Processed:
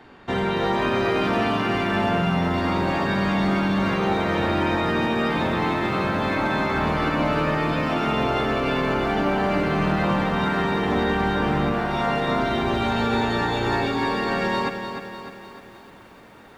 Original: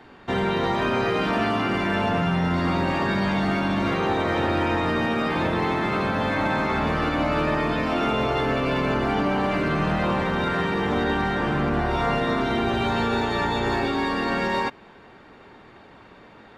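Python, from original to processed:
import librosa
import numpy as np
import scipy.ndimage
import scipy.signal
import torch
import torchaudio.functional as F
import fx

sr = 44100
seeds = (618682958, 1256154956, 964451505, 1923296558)

y = fx.low_shelf(x, sr, hz=140.0, db=-11.5, at=(11.72, 12.28))
y = fx.echo_crushed(y, sr, ms=302, feedback_pct=55, bits=9, wet_db=-8.0)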